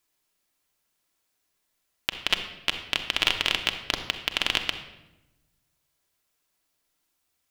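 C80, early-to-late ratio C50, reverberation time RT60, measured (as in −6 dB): 11.0 dB, 8.5 dB, 1.0 s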